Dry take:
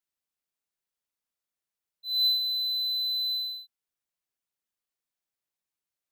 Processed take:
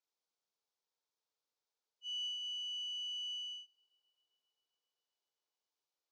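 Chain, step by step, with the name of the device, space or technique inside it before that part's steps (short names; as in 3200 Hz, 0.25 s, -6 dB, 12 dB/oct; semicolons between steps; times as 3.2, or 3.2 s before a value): 2.12–3.52 steep high-pass 470 Hz 36 dB/oct; hearing aid with frequency lowering (nonlinear frequency compression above 1600 Hz 1.5:1; compressor 3:1, threshold -36 dBFS, peak gain reduction 10.5 dB; speaker cabinet 320–5800 Hz, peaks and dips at 450 Hz +8 dB, 890 Hz +5 dB, 1900 Hz -8 dB, 2800 Hz -5 dB); analogue delay 0.132 s, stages 4096, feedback 79%, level -19 dB; gain -1 dB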